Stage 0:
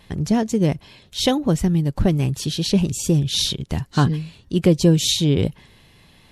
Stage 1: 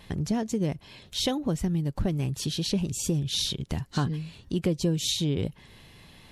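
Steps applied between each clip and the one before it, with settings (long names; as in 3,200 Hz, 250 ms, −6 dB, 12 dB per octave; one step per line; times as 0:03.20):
downward compressor 2 to 1, threshold −31 dBFS, peak gain reduction 12 dB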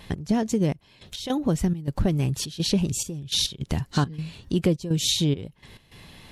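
gate pattern "x.xxx..x.xxx.xxx" 104 BPM −12 dB
level +4.5 dB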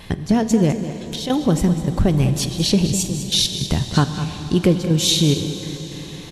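single-tap delay 203 ms −12 dB
on a send at −9 dB: convolution reverb RT60 5.2 s, pre-delay 25 ms
on the sum: level +6 dB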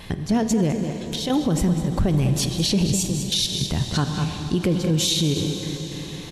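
brickwall limiter −12 dBFS, peak gain reduction 9 dB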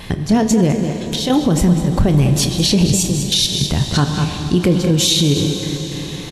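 double-tracking delay 28 ms −13 dB
level +6.5 dB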